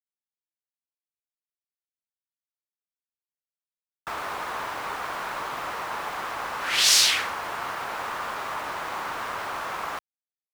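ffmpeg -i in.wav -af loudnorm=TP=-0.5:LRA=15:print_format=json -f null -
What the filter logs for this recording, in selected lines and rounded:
"input_i" : "-27.2",
"input_tp" : "-3.5",
"input_lra" : "9.7",
"input_thresh" : "-37.4",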